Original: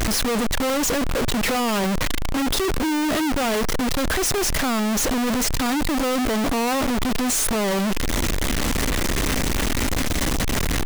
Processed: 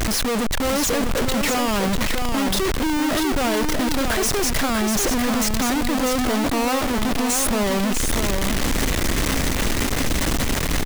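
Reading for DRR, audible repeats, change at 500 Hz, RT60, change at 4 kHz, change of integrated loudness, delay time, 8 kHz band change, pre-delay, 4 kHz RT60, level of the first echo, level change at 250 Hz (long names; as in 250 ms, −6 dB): no reverb audible, 1, +1.0 dB, no reverb audible, +1.0 dB, +1.0 dB, 645 ms, +1.0 dB, no reverb audible, no reverb audible, −5.5 dB, +1.0 dB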